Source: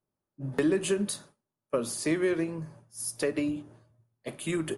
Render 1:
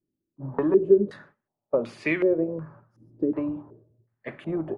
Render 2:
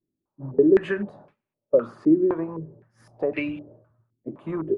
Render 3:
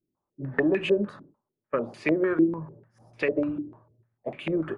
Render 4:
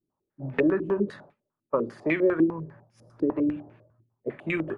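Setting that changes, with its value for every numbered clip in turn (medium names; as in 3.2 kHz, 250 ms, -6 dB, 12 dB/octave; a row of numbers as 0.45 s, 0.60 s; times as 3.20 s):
step-sequenced low-pass, rate: 2.7 Hz, 3.9 Hz, 6.7 Hz, 10 Hz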